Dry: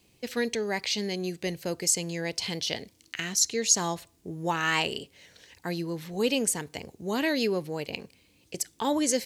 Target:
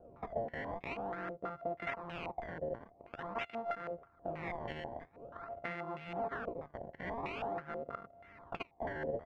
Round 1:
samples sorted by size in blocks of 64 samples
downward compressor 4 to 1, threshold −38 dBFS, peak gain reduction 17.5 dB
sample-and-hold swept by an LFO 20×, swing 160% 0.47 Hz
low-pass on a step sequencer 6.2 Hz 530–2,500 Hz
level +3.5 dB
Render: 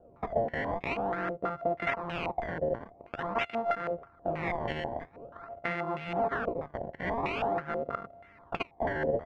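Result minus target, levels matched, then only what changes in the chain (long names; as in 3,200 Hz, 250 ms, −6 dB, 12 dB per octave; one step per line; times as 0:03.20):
downward compressor: peak gain reduction −8.5 dB
change: downward compressor 4 to 1, threshold −49.5 dBFS, peak gain reduction 26 dB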